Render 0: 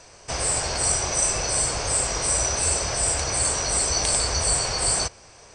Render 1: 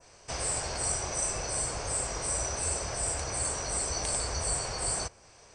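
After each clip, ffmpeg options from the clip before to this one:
-af "adynamicequalizer=threshold=0.0112:dfrequency=3900:dqfactor=0.76:tfrequency=3900:tqfactor=0.76:attack=5:release=100:ratio=0.375:range=2.5:mode=cutabove:tftype=bell,volume=0.447"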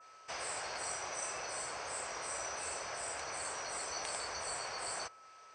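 -af "aeval=exprs='val(0)+0.002*sin(2*PI*1300*n/s)':c=same,bandpass=f=1700:t=q:w=0.62:csg=0,volume=0.841"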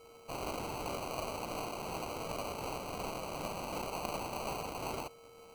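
-af "acrusher=samples=25:mix=1:aa=0.000001,volume=1.19"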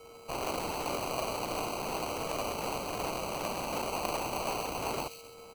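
-filter_complex "[0:a]acrossover=split=230|1900|2000[s0][s1][s2][s3];[s0]aeval=exprs='(mod(158*val(0)+1,2)-1)/158':c=same[s4];[s3]aecho=1:1:133|266|399|532|665:0.531|0.223|0.0936|0.0393|0.0165[s5];[s4][s1][s2][s5]amix=inputs=4:normalize=0,volume=1.78"

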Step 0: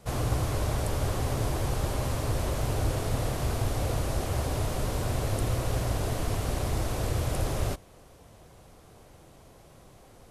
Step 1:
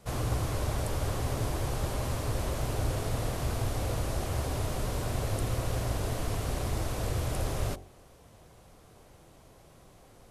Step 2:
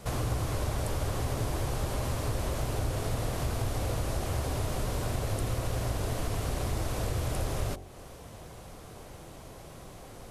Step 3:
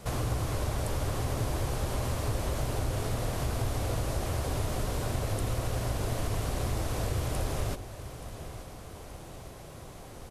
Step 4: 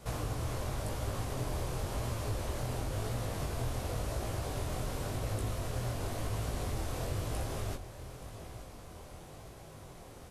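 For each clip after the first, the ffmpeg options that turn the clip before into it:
-af "bandreject=f=45.47:t=h:w=4,bandreject=f=90.94:t=h:w=4,bandreject=f=136.41:t=h:w=4,bandreject=f=181.88:t=h:w=4,bandreject=f=227.35:t=h:w=4,bandreject=f=272.82:t=h:w=4,bandreject=f=318.29:t=h:w=4,bandreject=f=363.76:t=h:w=4,bandreject=f=409.23:t=h:w=4,bandreject=f=454.7:t=h:w=4,bandreject=f=500.17:t=h:w=4,bandreject=f=545.64:t=h:w=4,bandreject=f=591.11:t=h:w=4,bandreject=f=636.58:t=h:w=4,bandreject=f=682.05:t=h:w=4,bandreject=f=727.52:t=h:w=4,bandreject=f=772.99:t=h:w=4,bandreject=f=818.46:t=h:w=4,bandreject=f=863.93:t=h:w=4,bandreject=f=909.4:t=h:w=4,volume=0.794"
-af "acompressor=threshold=0.00631:ratio=2,volume=2.82"
-af "aecho=1:1:877|1754|2631|3508|4385:0.2|0.108|0.0582|0.0314|0.017"
-af "flanger=delay=17.5:depth=7.6:speed=0.94,volume=0.841"

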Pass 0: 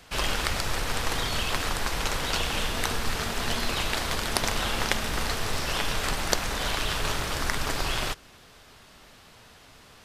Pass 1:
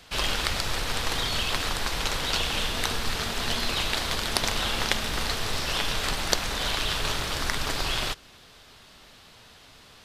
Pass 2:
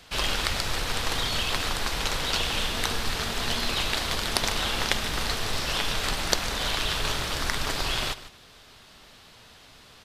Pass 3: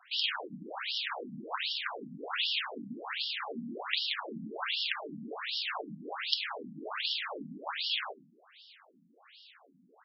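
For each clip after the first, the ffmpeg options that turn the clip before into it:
-af "equalizer=f=3800:t=o:w=0.97:g=5,volume=0.891"
-af "aecho=1:1:151:0.168"
-af "aeval=exprs='(mod(1.78*val(0)+1,2)-1)/1.78':c=same,afftfilt=real='re*between(b*sr/1024,200*pow(4000/200,0.5+0.5*sin(2*PI*1.3*pts/sr))/1.41,200*pow(4000/200,0.5+0.5*sin(2*PI*1.3*pts/sr))*1.41)':imag='im*between(b*sr/1024,200*pow(4000/200,0.5+0.5*sin(2*PI*1.3*pts/sr))/1.41,200*pow(4000/200,0.5+0.5*sin(2*PI*1.3*pts/sr))*1.41)':win_size=1024:overlap=0.75"

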